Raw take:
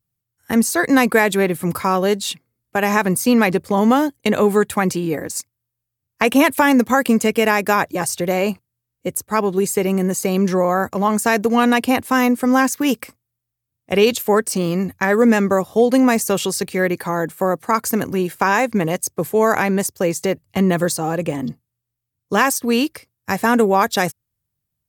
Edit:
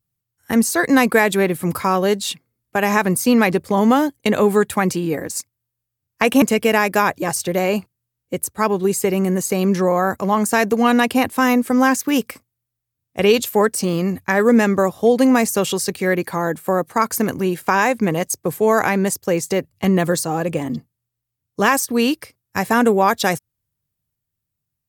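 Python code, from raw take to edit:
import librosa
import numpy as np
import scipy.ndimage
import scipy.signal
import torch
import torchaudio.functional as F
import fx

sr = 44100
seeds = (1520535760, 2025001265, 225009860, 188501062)

y = fx.edit(x, sr, fx.cut(start_s=6.42, length_s=0.73), tone=tone)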